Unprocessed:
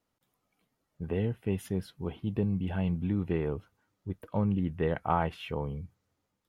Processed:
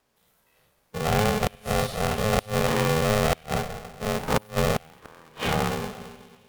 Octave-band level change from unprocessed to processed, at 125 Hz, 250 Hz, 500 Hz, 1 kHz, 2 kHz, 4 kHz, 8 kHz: +4.0 dB, +2.0 dB, +9.0 dB, +9.0 dB, +14.5 dB, +18.0 dB, can't be measured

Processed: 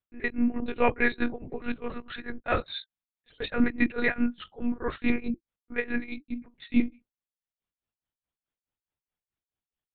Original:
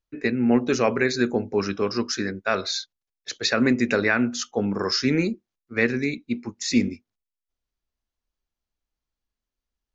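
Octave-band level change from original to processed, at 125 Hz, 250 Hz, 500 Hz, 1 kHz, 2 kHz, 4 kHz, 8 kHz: −11.0 dB, −5.0 dB, −8.0 dB, −3.5 dB, −4.5 dB, −13.0 dB, can't be measured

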